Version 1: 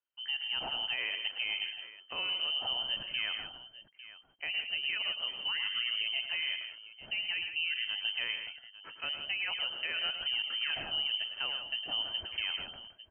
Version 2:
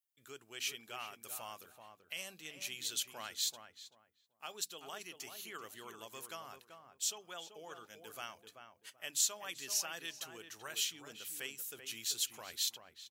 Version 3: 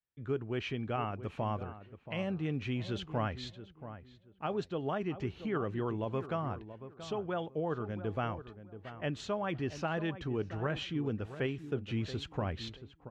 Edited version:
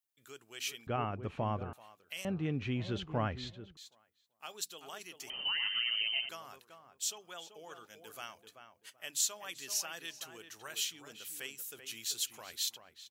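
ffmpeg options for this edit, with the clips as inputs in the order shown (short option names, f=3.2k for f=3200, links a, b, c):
-filter_complex "[2:a]asplit=2[a][b];[1:a]asplit=4[c][d][e][f];[c]atrim=end=0.872[g];[a]atrim=start=0.868:end=1.732[h];[d]atrim=start=1.728:end=2.252[i];[b]atrim=start=2.248:end=3.772[j];[e]atrim=start=3.768:end=5.302[k];[0:a]atrim=start=5.298:end=6.292[l];[f]atrim=start=6.288[m];[g][h]acrossfade=d=0.004:c1=hsin:c2=hsin[n];[n][i]acrossfade=d=0.004:c1=hsin:c2=hsin[o];[o][j]acrossfade=d=0.004:c1=hsin:c2=hsin[p];[p][k]acrossfade=d=0.004:c1=hsin:c2=hsin[q];[q][l]acrossfade=d=0.004:c1=hsin:c2=hsin[r];[r][m]acrossfade=d=0.004:c1=hsin:c2=hsin"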